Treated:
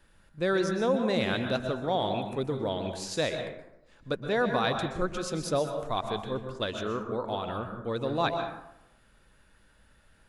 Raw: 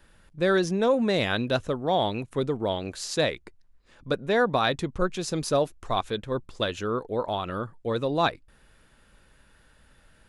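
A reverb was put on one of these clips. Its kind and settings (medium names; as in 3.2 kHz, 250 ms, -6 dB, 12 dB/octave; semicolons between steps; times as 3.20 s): plate-style reverb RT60 0.84 s, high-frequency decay 0.5×, pre-delay 110 ms, DRR 5.5 dB; trim -4.5 dB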